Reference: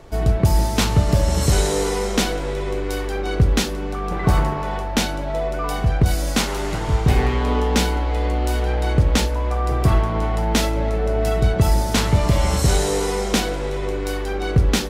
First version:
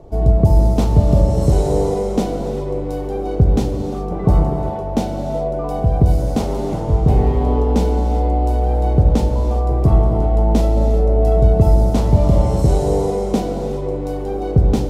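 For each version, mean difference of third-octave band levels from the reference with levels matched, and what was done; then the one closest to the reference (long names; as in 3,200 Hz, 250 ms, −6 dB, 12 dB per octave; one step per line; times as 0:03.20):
8.0 dB: drawn EQ curve 730 Hz 0 dB, 1,600 Hz −19 dB, 5,400 Hz −15 dB
reverb whose tail is shaped and stops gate 420 ms flat, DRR 6.5 dB
level +3 dB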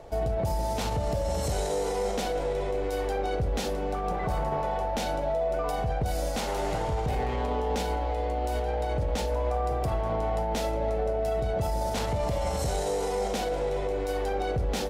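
3.5 dB: flat-topped bell 630 Hz +9 dB 1.1 octaves
brickwall limiter −14 dBFS, peak gain reduction 10.5 dB
level −6.5 dB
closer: second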